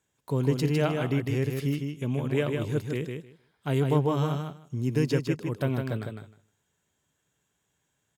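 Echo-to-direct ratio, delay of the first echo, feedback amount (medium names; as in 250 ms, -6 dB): -5.0 dB, 155 ms, 15%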